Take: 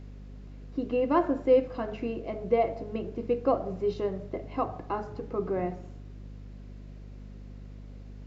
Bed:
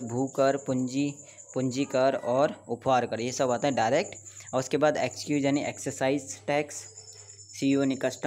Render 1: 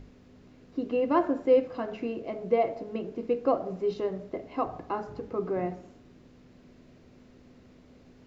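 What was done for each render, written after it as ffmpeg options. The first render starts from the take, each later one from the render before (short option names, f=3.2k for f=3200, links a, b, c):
-af "bandreject=f=50:t=h:w=6,bandreject=f=100:t=h:w=6,bandreject=f=150:t=h:w=6,bandreject=f=200:t=h:w=6"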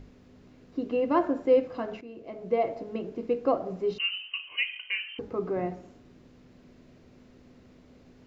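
-filter_complex "[0:a]asettb=1/sr,asplit=3[a][b][c];[a]atrim=end=3.984[d];[b]atrim=start=3.98:end=5.19,asetpts=PTS-STARTPTS,afade=t=in:d=0.004:c=qsin,afade=t=out:st=1.206:d=0.004:c=qsin,lowpass=f=2.7k:t=q:w=0.5098,lowpass=f=2.7k:t=q:w=0.6013,lowpass=f=2.7k:t=q:w=0.9,lowpass=f=2.7k:t=q:w=2.563,afreqshift=-3200[e];[c]atrim=start=5.186[f];[d][e]acrossfade=d=0.004:c1=hsin:c2=qsin[g];[g][f]acrossfade=d=0.004:c1=qsin:c2=hsin,asplit=2[h][i];[h]atrim=end=2.01,asetpts=PTS-STARTPTS,afade=t=out:st=2.006:d=0.004:c=hsin:silence=0.177828[j];[i]atrim=start=2.01,asetpts=PTS-STARTPTS,afade=t=in:d=0.69:silence=0.177828[k];[j][k]concat=n=2:v=0:a=1"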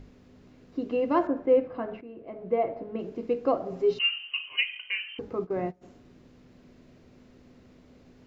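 -filter_complex "[0:a]asettb=1/sr,asplit=3[a][b][c];[a]atrim=end=1.274[d];[b]atrim=start=1.27:end=2.99,asetpts=PTS-STARTPTS,afade=t=in:d=0.004:c=qsin,afade=t=out:st=1.716:d=0.004:c=qsin,lowpass=2.2k[e];[c]atrim=start=2.986[f];[d][e]acrossfade=d=0.004:c1=hsin:c2=qsin[g];[g][f]acrossfade=d=0.004:c1=qsin:c2=hsin,asettb=1/sr,asplit=3[h][i][j];[h]atrim=end=3.714[k];[i]atrim=start=3.71:end=4.61,asetpts=PTS-STARTPTS,afade=t=in:d=0.004:c=qsin,afade=t=out:st=0.896:d=0.004:c=qsin,aecho=1:1:7.5:0.79,atrim=end_sample=39690[l];[j]atrim=start=4.606[m];[k][l]acrossfade=d=0.004:c1=hsin:c2=qsin[n];[n][m]acrossfade=d=0.004:c1=qsin:c2=hsin,asplit=3[o][p][q];[o]afade=t=out:st=5.39:d=0.02[r];[p]agate=range=-20dB:threshold=-34dB:ratio=16:release=100:detection=peak,afade=t=in:st=5.39:d=0.02,afade=t=out:st=5.81:d=0.02[s];[q]afade=t=in:st=5.81:d=0.02[t];[r][s][t]amix=inputs=3:normalize=0"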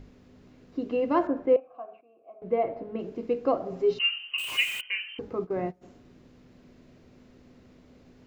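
-filter_complex "[0:a]asettb=1/sr,asplit=3[a][b][c];[a]atrim=end=1.564[d];[b]atrim=start=1.56:end=2.42,asetpts=PTS-STARTPTS,afade=t=in:d=0.004:c=qsin,afade=t=out:st=0.856:d=0.004:c=qsin,asplit=3[e][f][g];[e]bandpass=f=730:t=q:w=8,volume=0dB[h];[f]bandpass=f=1.09k:t=q:w=8,volume=-6dB[i];[g]bandpass=f=2.44k:t=q:w=8,volume=-9dB[j];[h][i][j]amix=inputs=3:normalize=0[k];[c]atrim=start=2.416[l];[d][k]acrossfade=d=0.004:c1=hsin:c2=qsin[m];[m][l]acrossfade=d=0.004:c1=qsin:c2=hsin,asettb=1/sr,asplit=3[n][o][p];[n]atrim=end=4.384[q];[o]atrim=start=4.38:end=4.81,asetpts=PTS-STARTPTS,afade=t=in:d=0.004:c=qsin,afade=t=out:st=0.426:d=0.004:c=qsin,aeval=exprs='val(0)+0.5*0.0266*sgn(val(0))':c=same[r];[p]atrim=start=4.806[s];[q][r]acrossfade=d=0.004:c1=hsin:c2=qsin[t];[t][s]acrossfade=d=0.004:c1=qsin:c2=hsin"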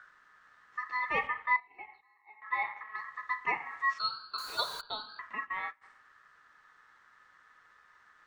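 -af "aeval=exprs='val(0)*sin(2*PI*1500*n/s)':c=same,flanger=delay=1.6:depth=7.4:regen=-64:speed=0.64:shape=sinusoidal"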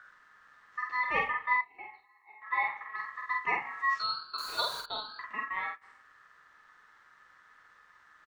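-filter_complex "[0:a]asplit=2[a][b];[b]adelay=47,volume=-3dB[c];[a][c]amix=inputs=2:normalize=0"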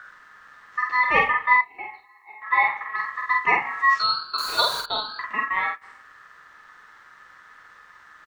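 -af "volume=10.5dB"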